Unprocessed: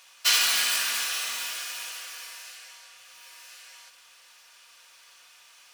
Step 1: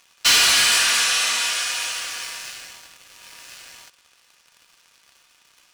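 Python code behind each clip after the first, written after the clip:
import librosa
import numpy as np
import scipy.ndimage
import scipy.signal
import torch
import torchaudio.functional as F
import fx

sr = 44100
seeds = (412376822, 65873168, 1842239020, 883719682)

y = scipy.signal.sosfilt(scipy.signal.butter(4, 10000.0, 'lowpass', fs=sr, output='sos'), x)
y = fx.leveller(y, sr, passes=3)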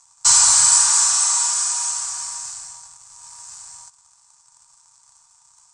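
y = fx.curve_eq(x, sr, hz=(150.0, 250.0, 400.0, 610.0, 910.0, 1700.0, 2900.0, 8100.0, 12000.0), db=(0, -28, -26, -14, 6, -13, -20, 13, -25))
y = y * librosa.db_to_amplitude(1.5)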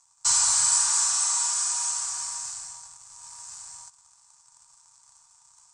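y = fx.rider(x, sr, range_db=4, speed_s=2.0)
y = y * librosa.db_to_amplitude(-7.0)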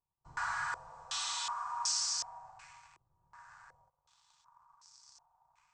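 y = fx.filter_held_lowpass(x, sr, hz=2.7, low_hz=350.0, high_hz=5100.0)
y = y * librosa.db_to_amplitude(-6.0)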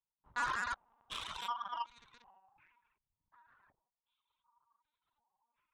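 y = fx.lpc_vocoder(x, sr, seeds[0], excitation='pitch_kept', order=10)
y = fx.cheby_harmonics(y, sr, harmonics=(5, 7), levels_db=(-31, -18), full_scale_db=-25.5)
y = fx.dereverb_blind(y, sr, rt60_s=1.7)
y = y * librosa.db_to_amplitude(2.0)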